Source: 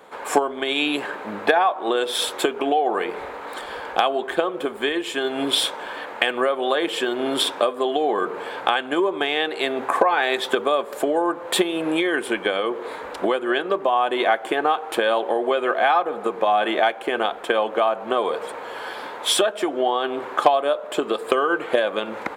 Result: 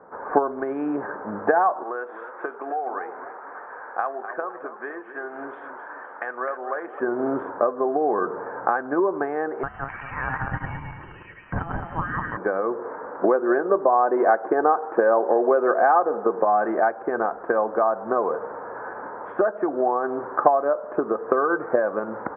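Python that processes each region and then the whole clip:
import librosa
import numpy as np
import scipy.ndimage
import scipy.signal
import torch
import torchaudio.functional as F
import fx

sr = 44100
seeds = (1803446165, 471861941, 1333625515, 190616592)

y = fx.chain(x, sr, fx.highpass(hz=1400.0, slope=6),
    fx.high_shelf(hz=3400.0, db=9.5),
    fx.echo_warbled(ms=258, feedback_pct=48, rate_hz=2.8, cents=127, wet_db=-11.0), at=(1.83, 7.0))
y = fx.chain(y, sr, fx.reverse_delay_fb(ms=107, feedback_pct=56, wet_db=-1),
    fx.freq_invert(carrier_hz=3400), at=(9.63, 12.37))
y = fx.chain(y, sr, fx.highpass(hz=160.0, slope=12),
    fx.dynamic_eq(hz=460.0, q=0.94, threshold_db=-30.0, ratio=4.0, max_db=4), at=(12.88, 16.43))
y = scipy.signal.sosfilt(scipy.signal.butter(8, 1600.0, 'lowpass', fs=sr, output='sos'), y)
y = fx.peak_eq(y, sr, hz=110.0, db=5.0, octaves=1.5)
y = y * 10.0 ** (-1.0 / 20.0)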